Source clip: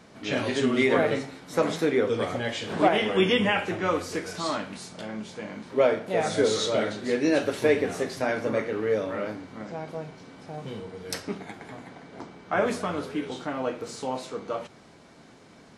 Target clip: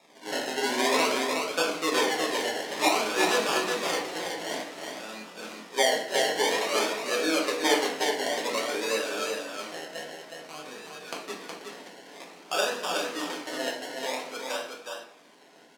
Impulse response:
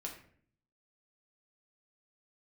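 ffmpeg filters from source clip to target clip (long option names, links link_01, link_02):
-filter_complex "[0:a]acrusher=samples=29:mix=1:aa=0.000001:lfo=1:lforange=17.4:lforate=0.53,highpass=260,lowpass=5000,aemphasis=mode=production:type=riaa,aecho=1:1:165|367:0.106|0.596[link_01];[1:a]atrim=start_sample=2205[link_02];[link_01][link_02]afir=irnorm=-1:irlink=0"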